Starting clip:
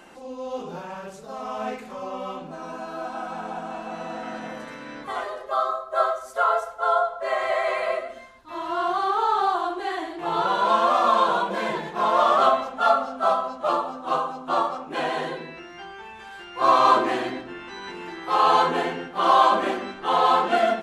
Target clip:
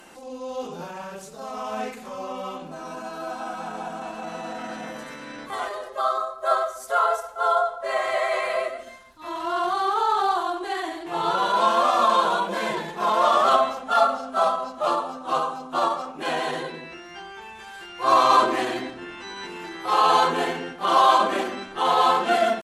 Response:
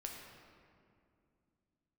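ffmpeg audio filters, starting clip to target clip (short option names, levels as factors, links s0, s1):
-af "atempo=0.92,aemphasis=mode=production:type=cd"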